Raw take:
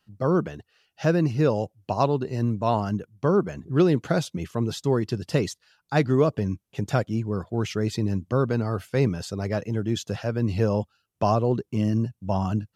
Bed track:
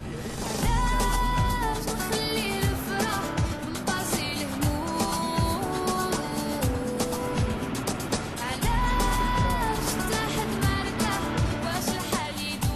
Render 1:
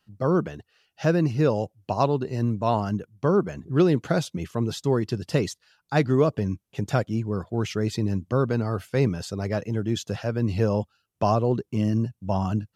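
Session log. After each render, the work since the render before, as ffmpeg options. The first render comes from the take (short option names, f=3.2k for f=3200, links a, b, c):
-af anull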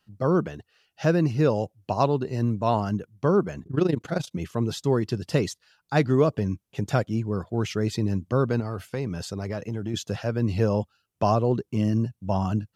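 -filter_complex "[0:a]asettb=1/sr,asplit=3[a][b][c];[a]atrim=end=3.634[d];[b]atrim=start=3.63:end=4.31,asetpts=PTS-STARTPTS,afade=t=in:d=0.004:c=qsin,afade=t=out:st=0.676:d=0.004:c=qsin,tremolo=f=26:d=0.824[e];[c]atrim=start=4.306[f];[d][e]acrossfade=d=0.004:c1=hsin:c2=qsin[g];[g][f]acrossfade=d=0.004:c1=qsin:c2=hsin,asettb=1/sr,asplit=3[h][i][j];[h]atrim=end=8.604[k];[i]atrim=start=8.6:end=9.94,asetpts=PTS-STARTPTS,afade=t=in:d=0.004:c=qsin,afade=t=out:st=1.336:d=0.004:c=qsin,acompressor=threshold=-25dB:ratio=4:attack=3.2:release=140:knee=1:detection=peak[l];[j]atrim=start=9.936[m];[k][l]acrossfade=d=0.004:c1=hsin:c2=qsin[n];[n][m]acrossfade=d=0.004:c1=qsin:c2=hsin"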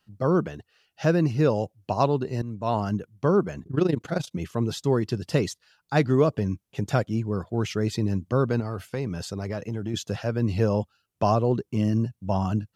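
-filter_complex "[0:a]asplit=2[a][b];[a]atrim=end=2.42,asetpts=PTS-STARTPTS,afade=t=out:st=2.416:d=0.004:c=hsin:silence=0.199526[c];[b]atrim=start=2.42,asetpts=PTS-STARTPTS,afade=t=in:d=0.42:silence=0.199526[d];[c][d]concat=n=2:v=0:a=1"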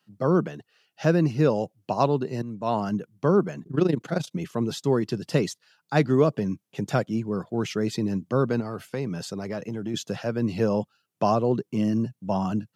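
-af "highpass=f=140:w=0.5412,highpass=f=140:w=1.3066,lowshelf=f=180:g=3.5"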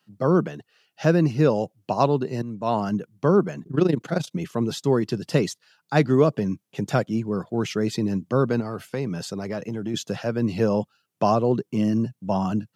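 -af "volume=2dB"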